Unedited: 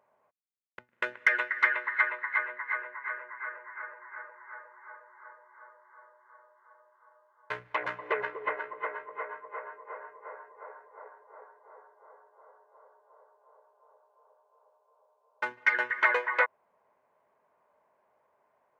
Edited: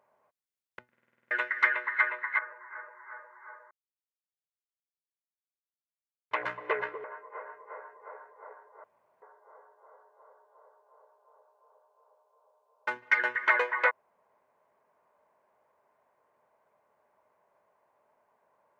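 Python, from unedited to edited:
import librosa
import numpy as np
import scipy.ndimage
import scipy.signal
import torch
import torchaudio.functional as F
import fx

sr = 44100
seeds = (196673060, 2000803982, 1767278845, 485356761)

y = fx.edit(x, sr, fx.stutter_over(start_s=0.91, slice_s=0.05, count=8),
    fx.cut(start_s=2.39, length_s=1.41),
    fx.silence(start_s=5.12, length_s=2.6),
    fx.cut(start_s=8.45, length_s=1.14),
    fx.room_tone_fill(start_s=11.39, length_s=0.38), tone=tone)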